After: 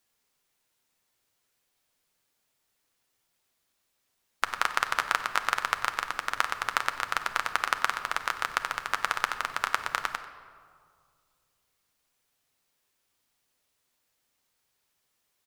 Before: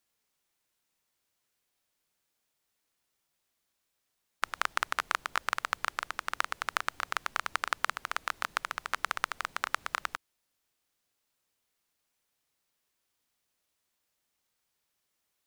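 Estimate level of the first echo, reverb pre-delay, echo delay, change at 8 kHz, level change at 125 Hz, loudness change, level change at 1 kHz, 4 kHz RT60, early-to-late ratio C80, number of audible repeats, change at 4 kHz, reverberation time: -17.5 dB, 8 ms, 93 ms, +4.0 dB, +5.0 dB, +4.0 dB, +4.5 dB, 1.1 s, 11.5 dB, 1, +4.0 dB, 2.1 s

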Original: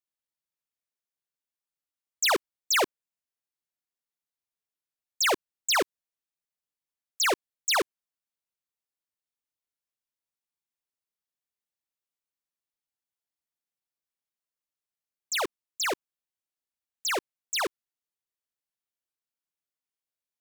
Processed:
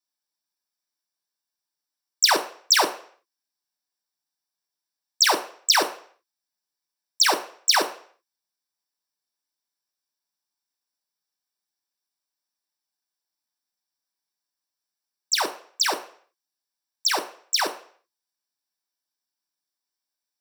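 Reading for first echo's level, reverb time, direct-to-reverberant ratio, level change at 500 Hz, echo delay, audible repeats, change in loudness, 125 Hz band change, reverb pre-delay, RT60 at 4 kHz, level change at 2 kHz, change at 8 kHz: none, 0.50 s, 4.0 dB, +1.0 dB, none, none, +6.0 dB, n/a, 3 ms, 0.50 s, +3.0 dB, +6.0 dB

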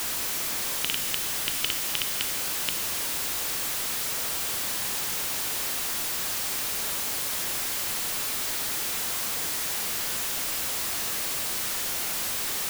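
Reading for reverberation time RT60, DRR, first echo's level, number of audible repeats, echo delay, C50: 1.4 s, 7.0 dB, none, none, none, 8.5 dB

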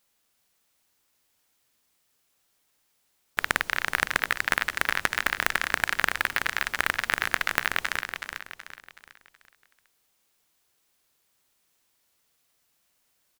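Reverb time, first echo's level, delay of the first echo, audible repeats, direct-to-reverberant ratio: none, -7.0 dB, 0.374 s, 4, none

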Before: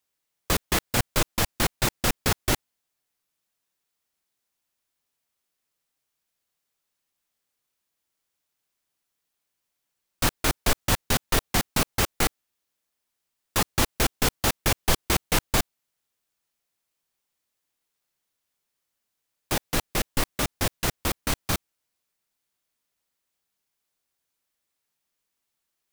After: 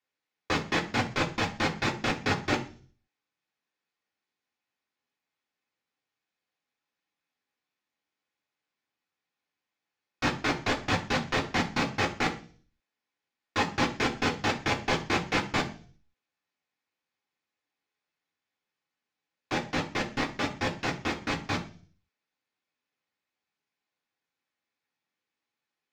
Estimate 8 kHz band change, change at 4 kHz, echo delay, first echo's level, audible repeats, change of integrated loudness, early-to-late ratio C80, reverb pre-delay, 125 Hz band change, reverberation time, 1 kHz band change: -14.0 dB, -4.5 dB, none, none, none, -3.5 dB, 17.5 dB, 3 ms, -5.0 dB, 0.40 s, 0.0 dB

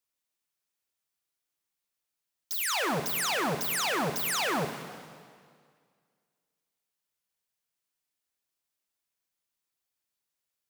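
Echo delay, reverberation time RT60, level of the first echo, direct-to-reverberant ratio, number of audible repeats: none, 2.0 s, none, 6.0 dB, none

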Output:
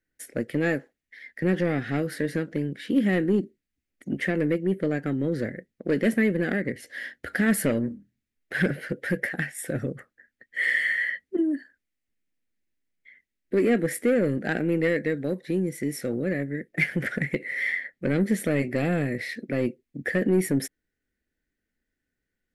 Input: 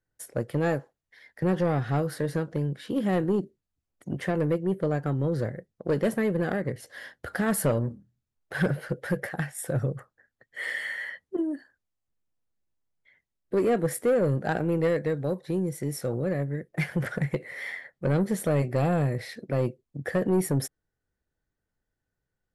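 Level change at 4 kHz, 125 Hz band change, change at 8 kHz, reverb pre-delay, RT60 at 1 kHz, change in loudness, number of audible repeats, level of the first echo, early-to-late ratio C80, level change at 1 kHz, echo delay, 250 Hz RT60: +3.0 dB, -2.5 dB, +0.5 dB, none, none, +2.0 dB, none, none, none, -5.0 dB, none, none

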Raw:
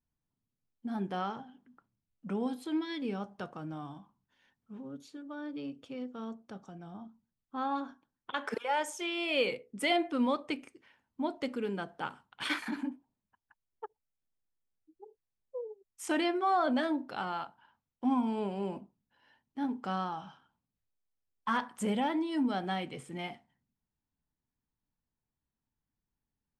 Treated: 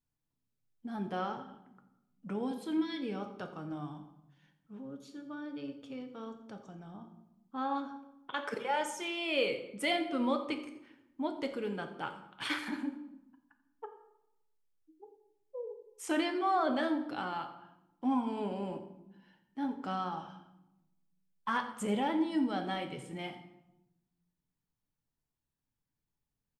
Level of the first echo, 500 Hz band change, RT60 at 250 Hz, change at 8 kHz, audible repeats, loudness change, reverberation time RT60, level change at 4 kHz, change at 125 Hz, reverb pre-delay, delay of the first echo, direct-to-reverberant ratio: -17.0 dB, -1.0 dB, 1.3 s, -1.0 dB, 1, -1.5 dB, 0.90 s, -1.0 dB, -1.5 dB, 6 ms, 86 ms, 6.0 dB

